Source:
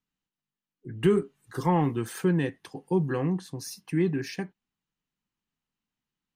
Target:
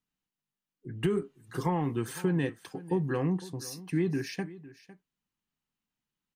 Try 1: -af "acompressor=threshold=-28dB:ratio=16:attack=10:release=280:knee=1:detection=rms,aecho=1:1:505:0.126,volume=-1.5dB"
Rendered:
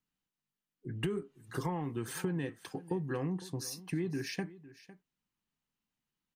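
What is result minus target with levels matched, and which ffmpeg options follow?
compressor: peak gain reduction +7 dB
-af "acompressor=threshold=-20.5dB:ratio=16:attack=10:release=280:knee=1:detection=rms,aecho=1:1:505:0.126,volume=-1.5dB"

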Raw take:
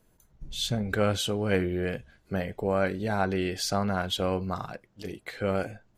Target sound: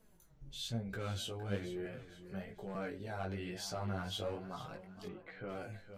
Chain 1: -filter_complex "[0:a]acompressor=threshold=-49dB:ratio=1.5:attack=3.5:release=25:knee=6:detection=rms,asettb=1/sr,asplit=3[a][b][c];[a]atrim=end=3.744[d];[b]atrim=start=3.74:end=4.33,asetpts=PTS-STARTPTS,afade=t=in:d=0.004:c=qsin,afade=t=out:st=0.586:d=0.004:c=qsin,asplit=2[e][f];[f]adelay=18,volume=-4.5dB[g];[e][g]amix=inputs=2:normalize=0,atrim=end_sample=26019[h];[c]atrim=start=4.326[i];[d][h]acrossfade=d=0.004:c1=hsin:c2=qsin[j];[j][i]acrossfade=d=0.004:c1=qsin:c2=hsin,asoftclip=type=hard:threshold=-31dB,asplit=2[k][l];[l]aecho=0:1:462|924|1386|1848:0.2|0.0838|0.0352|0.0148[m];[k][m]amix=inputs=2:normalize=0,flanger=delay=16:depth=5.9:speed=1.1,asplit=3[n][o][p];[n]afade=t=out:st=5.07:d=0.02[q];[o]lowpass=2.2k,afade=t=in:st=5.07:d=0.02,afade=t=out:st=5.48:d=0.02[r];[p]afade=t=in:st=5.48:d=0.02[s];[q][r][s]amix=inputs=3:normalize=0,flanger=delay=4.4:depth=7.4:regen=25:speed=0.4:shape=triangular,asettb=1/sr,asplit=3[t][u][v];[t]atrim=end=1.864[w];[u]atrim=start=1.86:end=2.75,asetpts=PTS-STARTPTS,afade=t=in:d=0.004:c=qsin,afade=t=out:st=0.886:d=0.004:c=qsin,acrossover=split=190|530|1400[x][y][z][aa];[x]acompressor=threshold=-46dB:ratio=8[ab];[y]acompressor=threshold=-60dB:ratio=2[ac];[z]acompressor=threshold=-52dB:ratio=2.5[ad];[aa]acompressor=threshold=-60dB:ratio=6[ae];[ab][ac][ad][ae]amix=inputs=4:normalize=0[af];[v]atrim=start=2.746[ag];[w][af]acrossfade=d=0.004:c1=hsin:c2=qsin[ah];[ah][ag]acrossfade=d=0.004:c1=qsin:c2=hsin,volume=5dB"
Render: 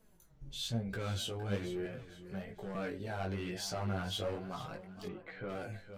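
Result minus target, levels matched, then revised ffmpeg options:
compressor: peak gain reduction -3.5 dB
-filter_complex "[0:a]acompressor=threshold=-59dB:ratio=1.5:attack=3.5:release=25:knee=6:detection=rms,asettb=1/sr,asplit=3[a][b][c];[a]atrim=end=3.744[d];[b]atrim=start=3.74:end=4.33,asetpts=PTS-STARTPTS,afade=t=in:d=0.004:c=qsin,afade=t=out:st=0.586:d=0.004:c=qsin,asplit=2[e][f];[f]adelay=18,volume=-4.5dB[g];[e][g]amix=inputs=2:normalize=0,atrim=end_sample=26019[h];[c]atrim=start=4.326[i];[d][h]acrossfade=d=0.004:c1=hsin:c2=qsin[j];[j][i]acrossfade=d=0.004:c1=qsin:c2=hsin,asoftclip=type=hard:threshold=-31dB,asplit=2[k][l];[l]aecho=0:1:462|924|1386|1848:0.2|0.0838|0.0352|0.0148[m];[k][m]amix=inputs=2:normalize=0,flanger=delay=16:depth=5.9:speed=1.1,asplit=3[n][o][p];[n]afade=t=out:st=5.07:d=0.02[q];[o]lowpass=2.2k,afade=t=in:st=5.07:d=0.02,afade=t=out:st=5.48:d=0.02[r];[p]afade=t=in:st=5.48:d=0.02[s];[q][r][s]amix=inputs=3:normalize=0,flanger=delay=4.4:depth=7.4:regen=25:speed=0.4:shape=triangular,asettb=1/sr,asplit=3[t][u][v];[t]atrim=end=1.864[w];[u]atrim=start=1.86:end=2.75,asetpts=PTS-STARTPTS,afade=t=in:d=0.004:c=qsin,afade=t=out:st=0.886:d=0.004:c=qsin,acrossover=split=190|530|1400[x][y][z][aa];[x]acompressor=threshold=-46dB:ratio=8[ab];[y]acompressor=threshold=-60dB:ratio=2[ac];[z]acompressor=threshold=-52dB:ratio=2.5[ad];[aa]acompressor=threshold=-60dB:ratio=6[ae];[ab][ac][ad][ae]amix=inputs=4:normalize=0[af];[v]atrim=start=2.746[ag];[w][af]acrossfade=d=0.004:c1=hsin:c2=qsin[ah];[ah][ag]acrossfade=d=0.004:c1=qsin:c2=hsin,volume=5dB"

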